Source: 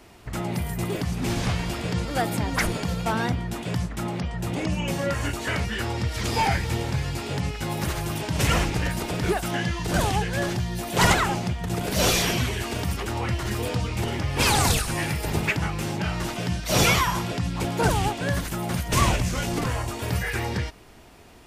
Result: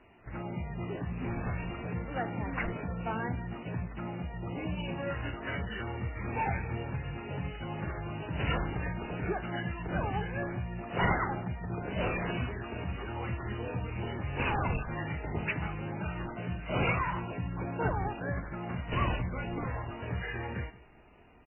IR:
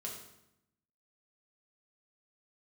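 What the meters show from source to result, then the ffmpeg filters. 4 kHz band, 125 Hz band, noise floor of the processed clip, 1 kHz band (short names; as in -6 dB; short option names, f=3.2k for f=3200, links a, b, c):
-18.0 dB, -8.5 dB, -44 dBFS, -8.5 dB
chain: -filter_complex "[0:a]asplit=2[a][b];[b]aecho=0:1:172|344:0.1|0.02[c];[a][c]amix=inputs=2:normalize=0,volume=-8.5dB" -ar 8000 -c:a libmp3lame -b:a 8k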